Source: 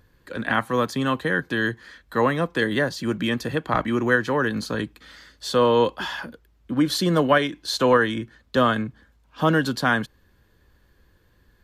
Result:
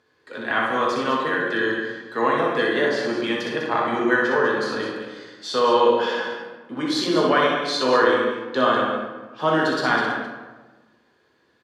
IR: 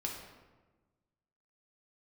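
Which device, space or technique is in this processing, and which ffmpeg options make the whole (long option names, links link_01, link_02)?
supermarket ceiling speaker: -filter_complex "[0:a]highpass=330,lowpass=6400[link_01];[1:a]atrim=start_sample=2205[link_02];[link_01][link_02]afir=irnorm=-1:irlink=0,aecho=1:1:61.22|201.2:0.631|0.355"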